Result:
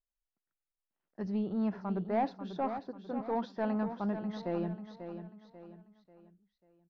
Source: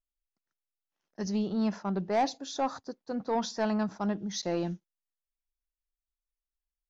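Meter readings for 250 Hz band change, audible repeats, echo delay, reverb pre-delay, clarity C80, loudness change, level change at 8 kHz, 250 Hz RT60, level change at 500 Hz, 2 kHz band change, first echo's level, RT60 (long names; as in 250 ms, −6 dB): −2.5 dB, 4, 541 ms, no reverb audible, no reverb audible, −3.5 dB, can't be measured, no reverb audible, −3.0 dB, −5.5 dB, −9.5 dB, no reverb audible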